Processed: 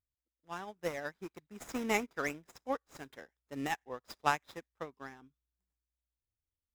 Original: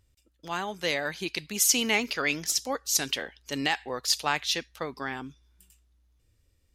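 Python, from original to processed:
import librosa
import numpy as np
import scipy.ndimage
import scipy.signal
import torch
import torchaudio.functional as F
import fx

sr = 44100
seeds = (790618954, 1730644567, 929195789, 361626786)

y = scipy.signal.medfilt(x, 15)
y = fx.notch(y, sr, hz=4400.0, q=6.0)
y = fx.upward_expand(y, sr, threshold_db=-44.0, expansion=2.5)
y = y * librosa.db_to_amplitude(1.0)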